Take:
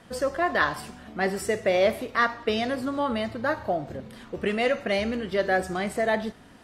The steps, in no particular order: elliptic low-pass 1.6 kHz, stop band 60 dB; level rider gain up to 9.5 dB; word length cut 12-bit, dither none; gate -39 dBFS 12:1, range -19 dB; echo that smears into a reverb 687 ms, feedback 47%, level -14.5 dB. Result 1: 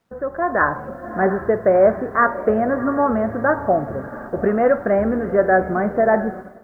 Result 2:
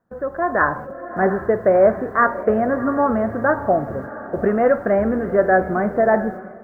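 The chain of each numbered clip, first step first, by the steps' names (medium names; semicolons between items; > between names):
echo that smears into a reverb > gate > elliptic low-pass > word length cut > level rider; elliptic low-pass > word length cut > gate > echo that smears into a reverb > level rider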